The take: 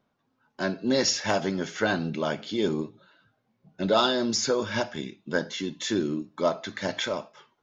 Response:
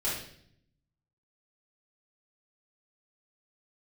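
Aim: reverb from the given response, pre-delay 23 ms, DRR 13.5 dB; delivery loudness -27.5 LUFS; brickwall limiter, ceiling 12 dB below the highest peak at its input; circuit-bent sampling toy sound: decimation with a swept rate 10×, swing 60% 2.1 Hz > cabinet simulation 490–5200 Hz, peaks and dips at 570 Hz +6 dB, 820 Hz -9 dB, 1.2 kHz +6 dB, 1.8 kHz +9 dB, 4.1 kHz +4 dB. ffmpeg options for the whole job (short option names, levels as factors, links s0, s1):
-filter_complex "[0:a]alimiter=limit=0.0944:level=0:latency=1,asplit=2[s0][s1];[1:a]atrim=start_sample=2205,adelay=23[s2];[s1][s2]afir=irnorm=-1:irlink=0,volume=0.0944[s3];[s0][s3]amix=inputs=2:normalize=0,acrusher=samples=10:mix=1:aa=0.000001:lfo=1:lforange=6:lforate=2.1,highpass=490,equalizer=f=570:t=q:w=4:g=6,equalizer=f=820:t=q:w=4:g=-9,equalizer=f=1200:t=q:w=4:g=6,equalizer=f=1800:t=q:w=4:g=9,equalizer=f=4100:t=q:w=4:g=4,lowpass=f=5200:w=0.5412,lowpass=f=5200:w=1.3066,volume=1.58"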